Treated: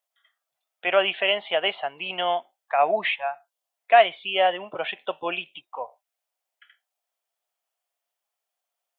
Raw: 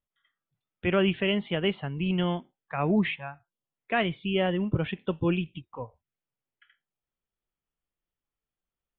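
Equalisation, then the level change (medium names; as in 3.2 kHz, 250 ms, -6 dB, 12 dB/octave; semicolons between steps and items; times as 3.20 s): resonant high-pass 680 Hz, resonance Q 4.9; treble shelf 2 kHz +10.5 dB; 0.0 dB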